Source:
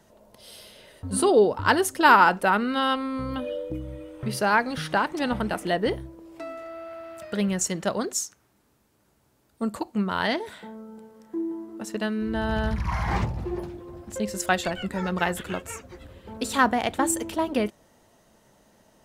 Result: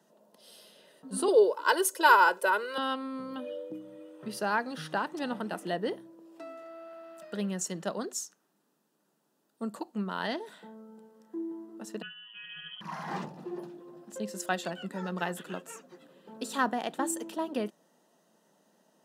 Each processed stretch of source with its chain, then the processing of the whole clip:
1.28–2.78 s: high-pass 300 Hz 24 dB/octave + treble shelf 5.8 kHz +8 dB + comb 2 ms, depth 84%
12.02–12.81 s: inharmonic resonator 98 Hz, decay 0.34 s, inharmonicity 0.008 + frequency inversion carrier 3.2 kHz
whole clip: elliptic high-pass 160 Hz; band-stop 2.2 kHz, Q 5.5; trim -7 dB

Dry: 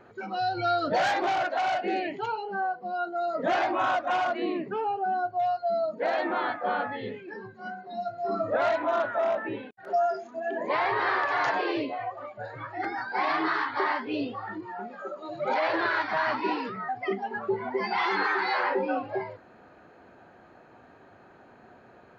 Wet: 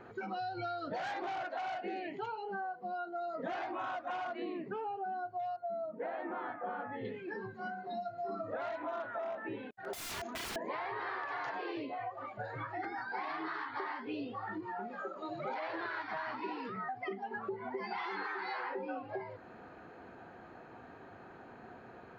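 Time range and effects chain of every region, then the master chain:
5.56–7.05 s: distance through air 490 m + tape noise reduction on one side only decoder only
9.93–10.56 s: bass shelf 86 Hz -9.5 dB + integer overflow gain 34.5 dB + level flattener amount 50%
whole clip: treble shelf 5.1 kHz -6.5 dB; band-stop 590 Hz, Q 12; compression, threshold -39 dBFS; trim +1.5 dB

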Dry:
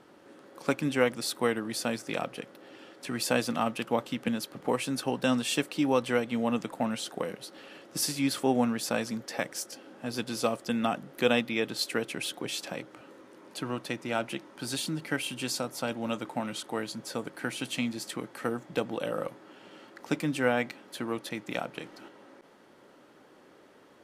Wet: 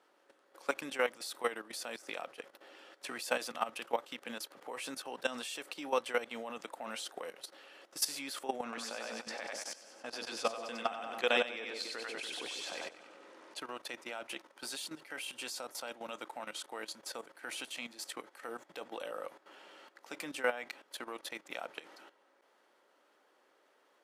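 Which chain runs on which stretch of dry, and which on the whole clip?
8.63–13.58 s: low-pass 7.8 kHz + two-band feedback delay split 550 Hz, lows 142 ms, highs 95 ms, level -3 dB
whole clip: high-pass 540 Hz 12 dB/octave; level held to a coarse grid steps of 14 dB

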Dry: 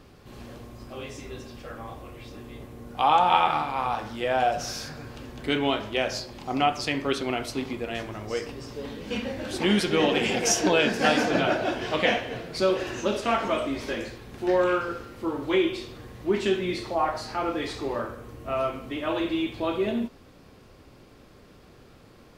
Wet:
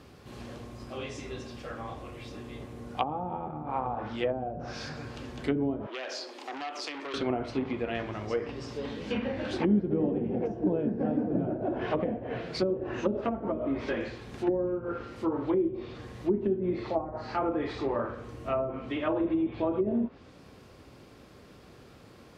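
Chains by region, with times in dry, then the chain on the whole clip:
5.86–7.14 s: steep high-pass 280 Hz 48 dB/octave + compression, threshold -30 dBFS + transformer saturation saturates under 3.4 kHz
whole clip: high-pass 53 Hz; low-pass that closes with the level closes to 330 Hz, closed at -21 dBFS

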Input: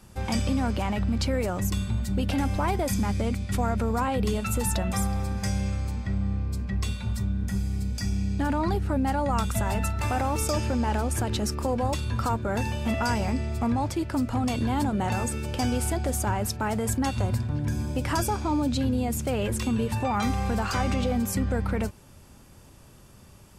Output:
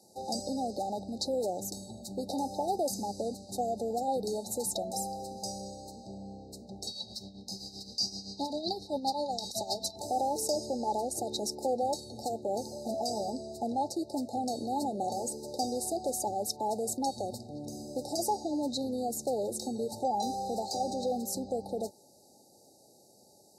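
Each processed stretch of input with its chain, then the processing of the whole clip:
6.87–9.96 s: high-order bell 2.7 kHz +15 dB 2.4 oct + tremolo 7.7 Hz, depth 65%
whole clip: FFT band-reject 880–3700 Hz; high-pass 410 Hz 12 dB/octave; treble shelf 9.4 kHz -7 dB

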